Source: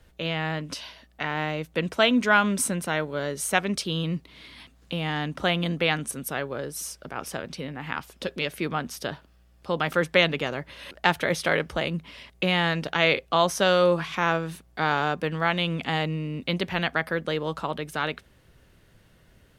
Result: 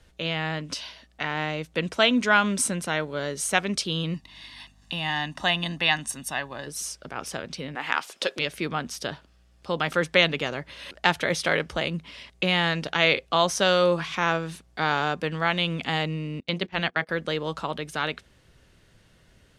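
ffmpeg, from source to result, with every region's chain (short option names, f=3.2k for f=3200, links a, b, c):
-filter_complex "[0:a]asettb=1/sr,asplit=3[a][b][c];[a]atrim=end=4.144[d];[b]atrim=start=4.14:end=6.67,asetpts=PTS-STARTPTS,afade=t=in:d=0.004:c=qsin,afade=t=out:st=2.526:d=0.004:c=qsin,lowshelf=f=210:g=-11.5,aecho=1:1:1.1:0.71,atrim=end_sample=111573,aeval=exprs='val(0)+0.00158*(sin(2*PI*50*n/s)+sin(2*PI*2*50*n/s)/2+sin(2*PI*3*50*n/s)/3+sin(2*PI*4*50*n/s)/4+sin(2*PI*5*50*n/s)/5)':c=same[e];[c]atrim=start=6.666[f];[d][e]acrossfade=d=0.004:c1=hsin:c2=qsin[g];[g][f]acrossfade=d=0.004:c1=qsin:c2=hsin,asettb=1/sr,asplit=3[h][i][j];[h]atrim=end=7.754[k];[i]atrim=start=7.75:end=8.39,asetpts=PTS-STARTPTS,afade=t=in:d=0.004:c=qsin,afade=t=out:st=0.636:d=0.004:c=qsin,highpass=440,acontrast=64[l];[j]atrim=start=8.386[m];[k][l]acrossfade=d=0.004:c1=hsin:c2=qsin[n];[n][m]acrossfade=d=0.004:c1=qsin:c2=hsin,asettb=1/sr,asplit=3[o][p][q];[o]atrim=end=16.404[r];[p]atrim=start=16.4:end=17.09,asetpts=PTS-STARTPTS,afade=t=in:d=0.004:c=qsin,afade=t=out:st=0.686:d=0.004:c=qsin,highshelf=f=9.1k:g=-9,bandreject=f=60:t=h:w=6,bandreject=f=120:t=h:w=6,bandreject=f=180:t=h:w=6,bandreject=f=240:t=h:w=6,bandreject=f=300:t=h:w=6,bandreject=f=360:t=h:w=6,bandreject=f=420:t=h:w=6,bandreject=f=480:t=h:w=6,agate=range=-22dB:threshold=-32dB:ratio=16:release=100:detection=peak[s];[q]atrim=start=17.086[t];[r][s]acrossfade=d=0.004:c1=hsin:c2=qsin[u];[u][t]acrossfade=d=0.004:c1=qsin:c2=hsin,lowpass=8.1k,highshelf=f=3.5k:g=7,volume=-1dB"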